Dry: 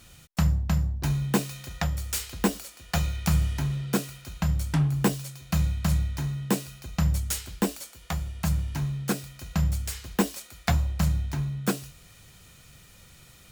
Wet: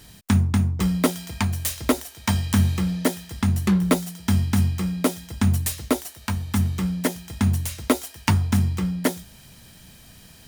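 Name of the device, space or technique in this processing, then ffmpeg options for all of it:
nightcore: -af "asetrate=56889,aresample=44100,volume=4.5dB"

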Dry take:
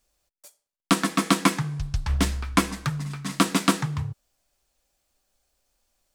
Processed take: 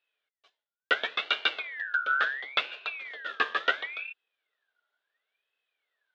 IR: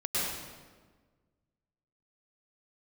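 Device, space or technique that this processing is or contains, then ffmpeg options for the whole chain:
voice changer toy: -af "aeval=exprs='val(0)*sin(2*PI*2000*n/s+2000*0.3/0.72*sin(2*PI*0.72*n/s))':channel_layout=same,highpass=430,equalizer=frequency=440:width_type=q:width=4:gain=9,equalizer=frequency=630:width_type=q:width=4:gain=6,equalizer=frequency=920:width_type=q:width=4:gain=-3,equalizer=frequency=1500:width_type=q:width=4:gain=7,equalizer=frequency=2200:width_type=q:width=4:gain=-4,equalizer=frequency=3500:width_type=q:width=4:gain=8,lowpass=frequency=3600:width=0.5412,lowpass=frequency=3600:width=1.3066,volume=-5.5dB"

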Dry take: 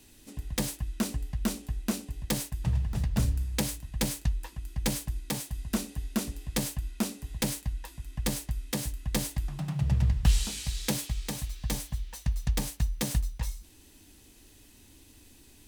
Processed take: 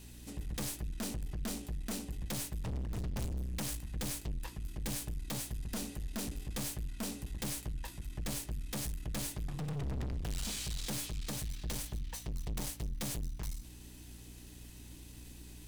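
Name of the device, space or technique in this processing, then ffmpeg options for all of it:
valve amplifier with mains hum: -af "aeval=exprs='(tanh(79.4*val(0)+0.4)-tanh(0.4))/79.4':channel_layout=same,aeval=exprs='val(0)+0.002*(sin(2*PI*60*n/s)+sin(2*PI*2*60*n/s)/2+sin(2*PI*3*60*n/s)/3+sin(2*PI*4*60*n/s)/4+sin(2*PI*5*60*n/s)/5)':channel_layout=same,volume=2.5dB"

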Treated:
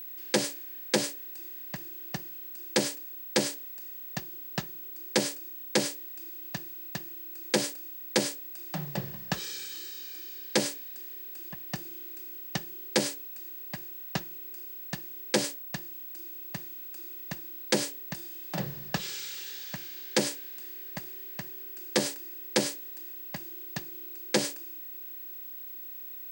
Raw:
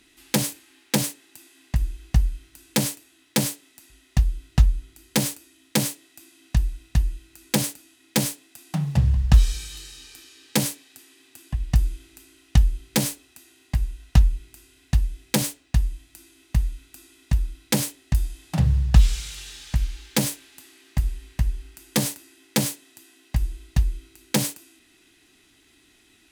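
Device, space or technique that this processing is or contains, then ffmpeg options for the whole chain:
old television with a line whistle: -af "highpass=frequency=190:width=0.5412,highpass=frequency=190:width=1.3066,equalizer=frequency=250:width_type=q:width=4:gain=-8,equalizer=frequency=360:width_type=q:width=4:gain=9,equalizer=frequency=550:width_type=q:width=4:gain=6,equalizer=frequency=1700:width_type=q:width=4:gain=5,equalizer=frequency=4800:width_type=q:width=4:gain=4,lowpass=frequency=8700:width=0.5412,lowpass=frequency=8700:width=1.3066,aeval=exprs='val(0)+0.0178*sin(2*PI*15734*n/s)':channel_layout=same,volume=-4dB"

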